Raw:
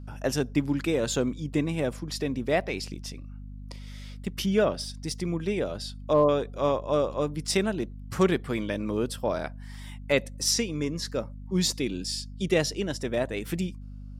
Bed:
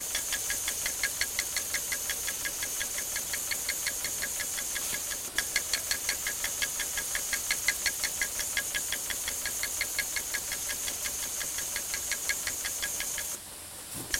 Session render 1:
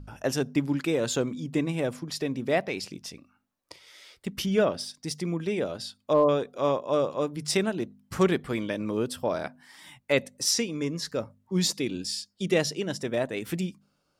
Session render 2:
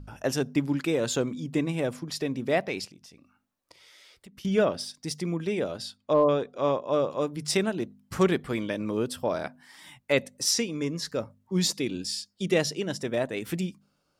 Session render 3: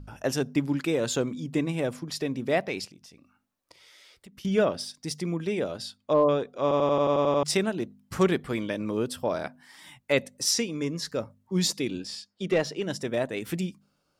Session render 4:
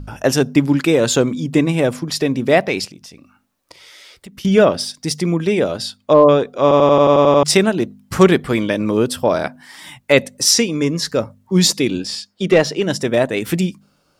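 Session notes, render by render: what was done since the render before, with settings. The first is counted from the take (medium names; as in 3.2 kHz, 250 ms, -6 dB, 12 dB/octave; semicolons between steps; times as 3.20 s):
de-hum 50 Hz, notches 5
2.85–4.45 s: compression 3:1, threshold -51 dBFS; 5.95–7.11 s: distance through air 62 m
6.62 s: stutter in place 0.09 s, 9 plays; 11.99–12.82 s: overdrive pedal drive 11 dB, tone 1.3 kHz, clips at -12.5 dBFS
trim +12 dB; peak limiter -1 dBFS, peak gain reduction 1.5 dB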